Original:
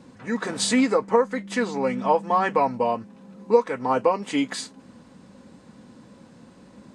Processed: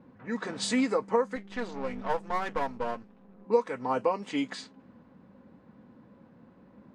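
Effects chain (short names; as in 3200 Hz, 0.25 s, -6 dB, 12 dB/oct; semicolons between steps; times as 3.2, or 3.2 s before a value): 1.36–3.45 half-wave gain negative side -12 dB; low-pass opened by the level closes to 1700 Hz, open at -18.5 dBFS; gain -6.5 dB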